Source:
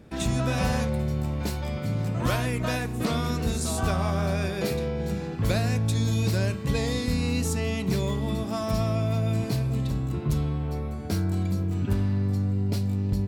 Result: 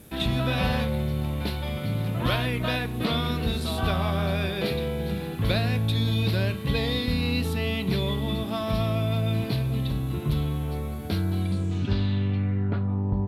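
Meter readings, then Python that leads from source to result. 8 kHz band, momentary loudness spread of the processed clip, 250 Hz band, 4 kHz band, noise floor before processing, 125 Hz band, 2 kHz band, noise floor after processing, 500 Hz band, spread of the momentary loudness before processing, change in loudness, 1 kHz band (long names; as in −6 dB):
−9.5 dB, 4 LU, 0.0 dB, +5.5 dB, −32 dBFS, 0.0 dB, +2.5 dB, −32 dBFS, 0.0 dB, 4 LU, +0.5 dB, +0.5 dB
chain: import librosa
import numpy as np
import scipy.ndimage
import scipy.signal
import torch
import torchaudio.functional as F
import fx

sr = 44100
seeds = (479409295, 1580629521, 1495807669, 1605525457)

y = fx.high_shelf_res(x, sr, hz=5000.0, db=-11.5, q=3.0)
y = fx.dmg_noise_colour(y, sr, seeds[0], colour='blue', level_db=-58.0)
y = fx.filter_sweep_lowpass(y, sr, from_hz=12000.0, to_hz=930.0, start_s=11.38, end_s=13.01, q=3.5)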